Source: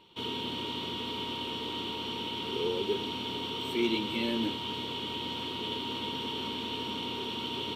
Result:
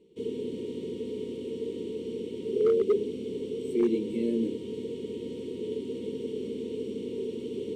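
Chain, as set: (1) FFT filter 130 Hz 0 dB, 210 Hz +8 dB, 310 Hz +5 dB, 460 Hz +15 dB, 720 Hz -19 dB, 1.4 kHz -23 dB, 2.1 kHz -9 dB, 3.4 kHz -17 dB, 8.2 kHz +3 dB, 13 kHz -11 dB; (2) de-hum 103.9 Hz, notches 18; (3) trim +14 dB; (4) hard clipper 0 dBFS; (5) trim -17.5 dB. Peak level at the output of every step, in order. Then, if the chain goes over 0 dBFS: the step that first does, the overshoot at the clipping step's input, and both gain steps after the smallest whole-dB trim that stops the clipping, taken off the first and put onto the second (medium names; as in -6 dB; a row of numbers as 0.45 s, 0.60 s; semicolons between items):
-9.5 dBFS, -10.0 dBFS, +4.0 dBFS, 0.0 dBFS, -17.5 dBFS; step 3, 4.0 dB; step 3 +10 dB, step 5 -13.5 dB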